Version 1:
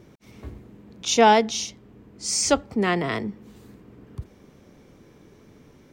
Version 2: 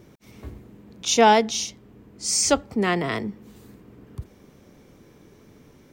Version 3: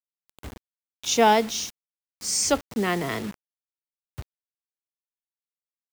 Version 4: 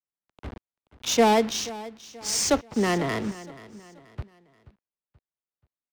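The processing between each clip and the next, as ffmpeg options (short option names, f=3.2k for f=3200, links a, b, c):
-af "highshelf=f=9.3k:g=7"
-af "acrusher=bits=5:mix=0:aa=0.000001,volume=-2.5dB"
-filter_complex "[0:a]acrossover=split=360|520|8000[a][b][c][d];[c]volume=24dB,asoftclip=hard,volume=-24dB[e];[a][b][e][d]amix=inputs=4:normalize=0,adynamicsmooth=sensitivity=6.5:basefreq=1.9k,aecho=1:1:481|962|1443:0.133|0.052|0.0203,volume=2dB"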